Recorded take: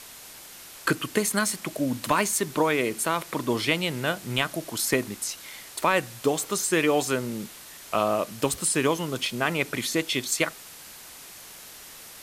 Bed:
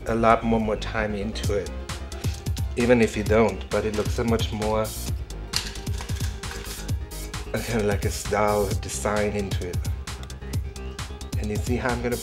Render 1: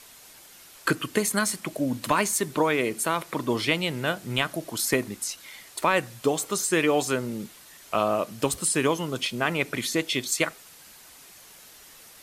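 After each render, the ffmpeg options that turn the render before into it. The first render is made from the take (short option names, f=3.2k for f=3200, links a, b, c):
-af "afftdn=nr=6:nf=-45"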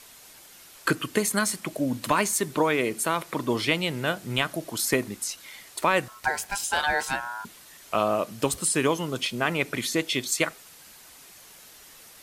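-filter_complex "[0:a]asettb=1/sr,asplit=3[a][b][c];[a]atrim=end=6.084[d];[b]atrim=start=6.08:end=7.45,asetpts=PTS-STARTPTS,afade=t=in:d=0.004:c=qsin,afade=t=out:st=1.366:d=0.004:c=qsin,aeval=exprs='val(0)*sin(2*PI*1200*n/s)':c=same[e];[c]atrim=start=7.446[f];[d][e]acrossfade=d=0.004:c1=hsin:c2=qsin[g];[g][f]acrossfade=d=0.004:c1=qsin:c2=hsin"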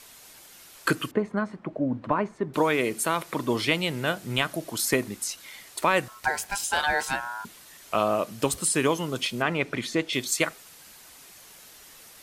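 -filter_complex "[0:a]asettb=1/sr,asplit=3[a][b][c];[a]atrim=end=1.114[d];[b]atrim=start=1.11:end=2.54,asetpts=PTS-STARTPTS,afade=t=in:d=0.004:c=qsin,afade=t=out:st=1.426:d=0.004:c=qsin,lowpass=1.1k[e];[c]atrim=start=2.536[f];[d][e]acrossfade=d=0.004:c1=hsin:c2=qsin[g];[g][f]acrossfade=d=0.004:c1=qsin:c2=hsin,asettb=1/sr,asplit=3[h][i][j];[h]atrim=end=9.424[k];[i]atrim=start=9.42:end=10.13,asetpts=PTS-STARTPTS,afade=t=in:d=0.004:c=qsin,afade=t=out:st=0.706:d=0.004:c=qsin,aemphasis=mode=reproduction:type=50fm[l];[j]atrim=start=10.126[m];[k][l]acrossfade=d=0.004:c1=hsin:c2=qsin[n];[n][m]acrossfade=d=0.004:c1=qsin:c2=hsin"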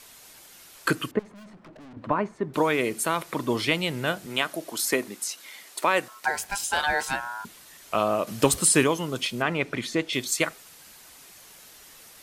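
-filter_complex "[0:a]asettb=1/sr,asplit=3[a][b][c];[a]atrim=end=1.194[d];[b]atrim=start=1.19:end=1.97,asetpts=PTS-STARTPTS,afade=t=in:d=0.004:c=qsin,afade=t=out:st=0.776:d=0.004:c=qsin,aeval=exprs='(tanh(178*val(0)+0.15)-tanh(0.15))/178':c=same[e];[c]atrim=start=1.966[f];[d][e]acrossfade=d=0.004:c1=hsin:c2=qsin[g];[g][f]acrossfade=d=0.004:c1=qsin:c2=hsin,asettb=1/sr,asplit=3[h][i][j];[h]atrim=end=4.264[k];[i]atrim=start=4.26:end=6.29,asetpts=PTS-STARTPTS,afade=t=in:d=0.004:c=qsin,afade=t=out:st=2.026:d=0.004:c=qsin,highpass=250[l];[j]atrim=start=6.286[m];[k][l]acrossfade=d=0.004:c1=hsin:c2=qsin[n];[n][m]acrossfade=d=0.004:c1=qsin:c2=hsin,asettb=1/sr,asplit=3[o][p][q];[o]atrim=end=8.274[r];[p]atrim=start=8.27:end=8.84,asetpts=PTS-STARTPTS,afade=t=in:d=0.004:c=qsin,afade=t=out:st=0.566:d=0.004:c=qsin,acontrast=33[s];[q]atrim=start=8.836[t];[r][s]acrossfade=d=0.004:c1=hsin:c2=qsin[u];[u][t]acrossfade=d=0.004:c1=qsin:c2=hsin"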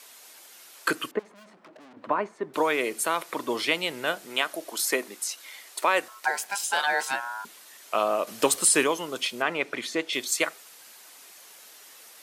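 -af "highpass=360"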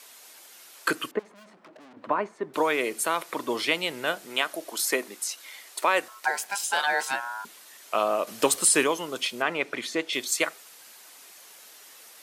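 -af anull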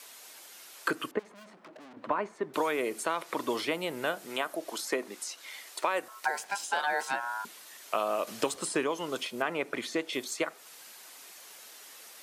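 -filter_complex "[0:a]acrossover=split=1500|7900[a][b][c];[a]acompressor=threshold=-27dB:ratio=4[d];[b]acompressor=threshold=-38dB:ratio=4[e];[c]acompressor=threshold=-51dB:ratio=4[f];[d][e][f]amix=inputs=3:normalize=0"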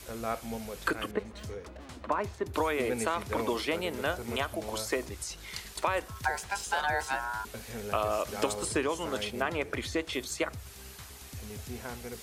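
-filter_complex "[1:a]volume=-16dB[a];[0:a][a]amix=inputs=2:normalize=0"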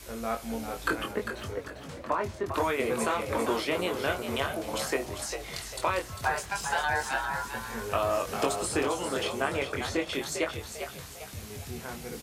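-filter_complex "[0:a]asplit=2[a][b];[b]adelay=22,volume=-4.5dB[c];[a][c]amix=inputs=2:normalize=0,asplit=2[d][e];[e]asplit=5[f][g][h][i][j];[f]adelay=399,afreqshift=66,volume=-8dB[k];[g]adelay=798,afreqshift=132,volume=-16dB[l];[h]adelay=1197,afreqshift=198,volume=-23.9dB[m];[i]adelay=1596,afreqshift=264,volume=-31.9dB[n];[j]adelay=1995,afreqshift=330,volume=-39.8dB[o];[k][l][m][n][o]amix=inputs=5:normalize=0[p];[d][p]amix=inputs=2:normalize=0"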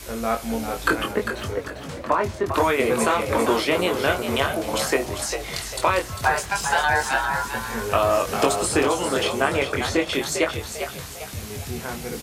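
-af "volume=8dB"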